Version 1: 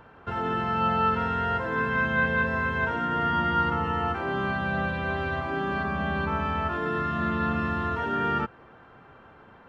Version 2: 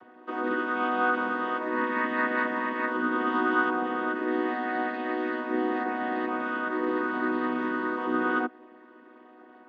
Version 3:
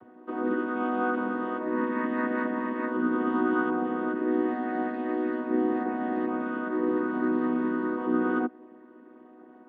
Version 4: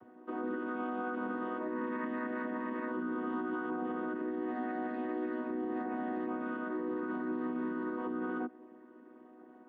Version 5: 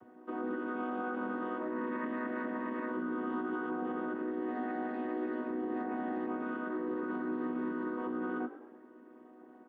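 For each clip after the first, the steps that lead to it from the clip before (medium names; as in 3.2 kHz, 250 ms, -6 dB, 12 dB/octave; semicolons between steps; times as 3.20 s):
vocoder on a held chord major triad, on B3
tilt EQ -4 dB/octave; trim -4 dB
peak limiter -24 dBFS, peak gain reduction 9.5 dB; trim -4.5 dB
frequency-shifting echo 105 ms, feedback 42%, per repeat +47 Hz, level -14.5 dB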